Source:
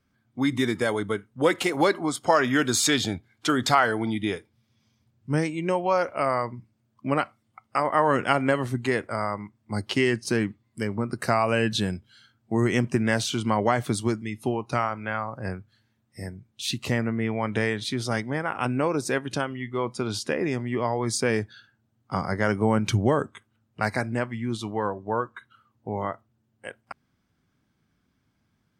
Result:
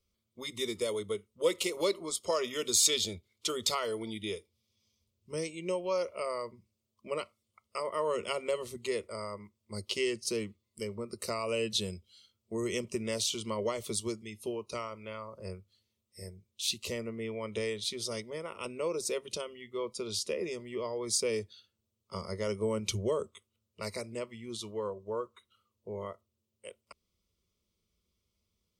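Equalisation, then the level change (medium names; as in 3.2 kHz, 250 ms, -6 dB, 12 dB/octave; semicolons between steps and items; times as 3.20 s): static phaser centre 320 Hz, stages 4; static phaser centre 670 Hz, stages 4; 0.0 dB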